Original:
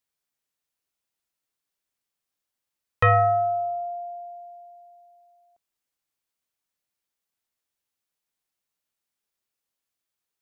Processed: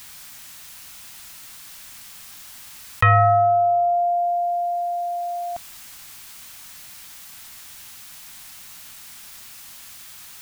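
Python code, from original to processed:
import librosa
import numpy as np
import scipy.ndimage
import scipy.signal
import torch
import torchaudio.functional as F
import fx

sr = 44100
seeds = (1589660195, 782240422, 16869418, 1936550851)

y = fx.peak_eq(x, sr, hz=440.0, db=-15.0, octaves=1.0)
y = fx.env_flatten(y, sr, amount_pct=70)
y = y * 10.0 ** (4.0 / 20.0)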